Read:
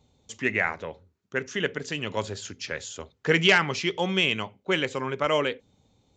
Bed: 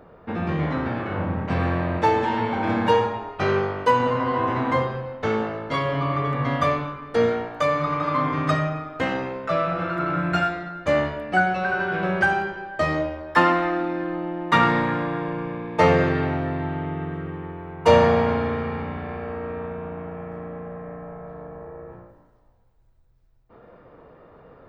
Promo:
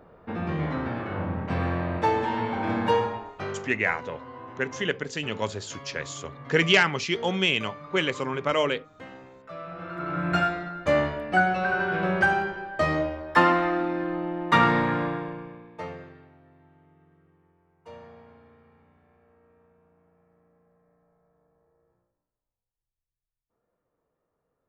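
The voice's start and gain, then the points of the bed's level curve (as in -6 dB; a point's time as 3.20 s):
3.25 s, 0.0 dB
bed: 3.15 s -4 dB
3.83 s -19 dB
9.45 s -19 dB
10.34 s -1.5 dB
15.06 s -1.5 dB
16.30 s -30.5 dB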